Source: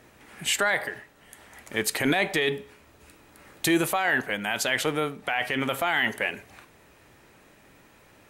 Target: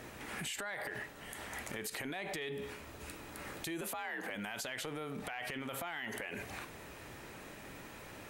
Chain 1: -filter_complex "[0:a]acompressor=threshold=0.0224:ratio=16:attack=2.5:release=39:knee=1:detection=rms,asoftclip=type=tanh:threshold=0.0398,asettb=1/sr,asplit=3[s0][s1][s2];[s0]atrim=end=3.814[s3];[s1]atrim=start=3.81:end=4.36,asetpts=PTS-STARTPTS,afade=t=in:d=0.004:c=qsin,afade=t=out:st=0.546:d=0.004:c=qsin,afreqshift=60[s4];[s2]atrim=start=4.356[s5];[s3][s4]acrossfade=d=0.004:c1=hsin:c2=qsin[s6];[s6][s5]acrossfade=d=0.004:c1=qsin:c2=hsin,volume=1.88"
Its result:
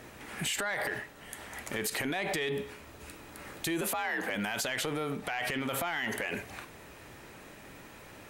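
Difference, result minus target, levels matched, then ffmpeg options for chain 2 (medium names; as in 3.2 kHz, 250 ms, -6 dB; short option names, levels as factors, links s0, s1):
compression: peak gain reduction -9 dB
-filter_complex "[0:a]acompressor=threshold=0.0075:ratio=16:attack=2.5:release=39:knee=1:detection=rms,asoftclip=type=tanh:threshold=0.0398,asettb=1/sr,asplit=3[s0][s1][s2];[s0]atrim=end=3.814[s3];[s1]atrim=start=3.81:end=4.36,asetpts=PTS-STARTPTS,afade=t=in:d=0.004:c=qsin,afade=t=out:st=0.546:d=0.004:c=qsin,afreqshift=60[s4];[s2]atrim=start=4.356[s5];[s3][s4]acrossfade=d=0.004:c1=hsin:c2=qsin[s6];[s6][s5]acrossfade=d=0.004:c1=qsin:c2=hsin,volume=1.88"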